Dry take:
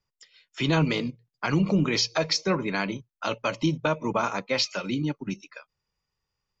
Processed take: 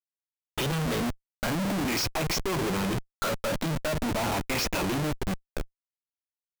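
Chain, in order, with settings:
rippled gain that drifts along the octave scale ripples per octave 0.69, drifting +0.41 Hz, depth 11 dB
brickwall limiter −18 dBFS, peak gain reduction 9 dB
comparator with hysteresis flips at −35 dBFS
level +2.5 dB

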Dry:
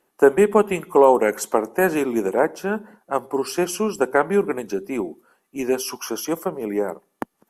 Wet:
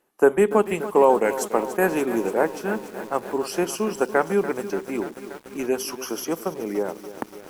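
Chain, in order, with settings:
feedback echo at a low word length 289 ms, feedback 80%, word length 6 bits, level −13 dB
level −2.5 dB

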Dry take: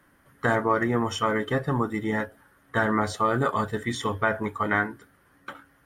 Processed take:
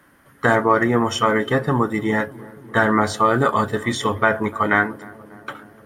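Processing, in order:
low-shelf EQ 75 Hz −8 dB
on a send: feedback echo with a low-pass in the loop 296 ms, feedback 76%, low-pass 1,100 Hz, level −20 dB
on the sum: level +7 dB

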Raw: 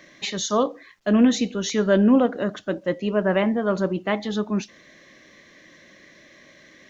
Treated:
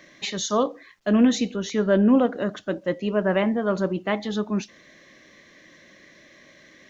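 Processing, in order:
0:01.56–0:02.09: high-shelf EQ 3,200 Hz −8 dB
level −1 dB

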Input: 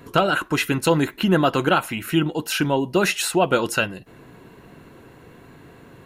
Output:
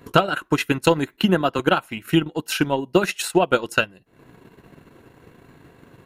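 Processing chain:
transient designer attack +8 dB, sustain −11 dB
0:01.17–0:01.59: multiband upward and downward expander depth 40%
level −3.5 dB

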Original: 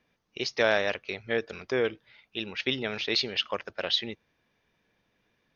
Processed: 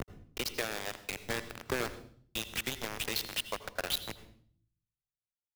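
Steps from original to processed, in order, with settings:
noise reduction from a noise print of the clip's start 19 dB
mains hum 50 Hz, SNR 13 dB
in parallel at −1.5 dB: brickwall limiter −24.5 dBFS, peak gain reduction 15 dB
on the sum: downward compressor 8 to 1, threshold −38 dBFS, peak gain reduction 20 dB
bit reduction 6 bits
on a send at −12 dB: convolution reverb, pre-delay 76 ms
on the sum: multiband upward and downward expander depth 40%
level +4.5 dB

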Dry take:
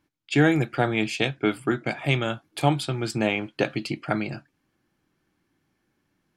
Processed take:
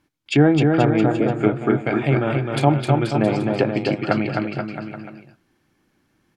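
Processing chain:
gain on a spectral selection 0:01.06–0:01.31, 700–6,500 Hz −24 dB
treble cut that deepens with the level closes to 1,000 Hz, closed at −19.5 dBFS
on a send: bouncing-ball delay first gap 260 ms, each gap 0.85×, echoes 5
on the sum: level +5 dB

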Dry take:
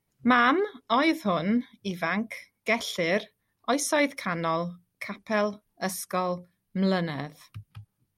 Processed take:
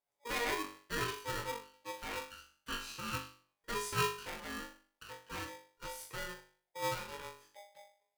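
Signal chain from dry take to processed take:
resonators tuned to a chord G2 fifth, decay 0.44 s
ring modulator with a square carrier 710 Hz

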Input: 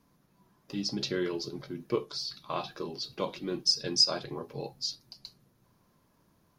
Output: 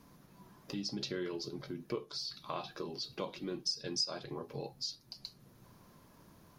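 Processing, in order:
downward compressor 2 to 1, threshold −55 dBFS, peak gain reduction 19.5 dB
level +7.5 dB

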